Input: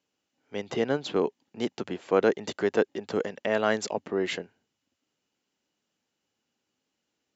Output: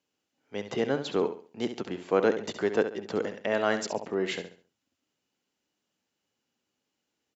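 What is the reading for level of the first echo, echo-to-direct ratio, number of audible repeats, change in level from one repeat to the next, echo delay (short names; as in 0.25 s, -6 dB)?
-10.0 dB, -9.5 dB, 3, -10.0 dB, 68 ms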